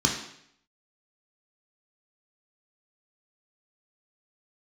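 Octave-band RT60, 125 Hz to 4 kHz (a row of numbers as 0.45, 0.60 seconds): 0.75, 0.70, 0.70, 0.70, 0.70, 0.70 seconds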